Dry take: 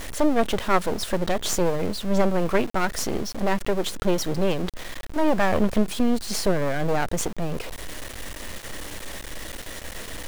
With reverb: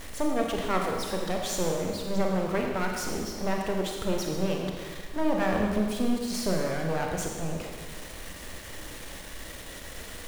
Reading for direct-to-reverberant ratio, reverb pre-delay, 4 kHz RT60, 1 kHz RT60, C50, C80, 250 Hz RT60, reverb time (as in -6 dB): 0.5 dB, 30 ms, 1.5 s, 1.5 s, 2.0 dB, 3.5 dB, 1.6 s, 1.6 s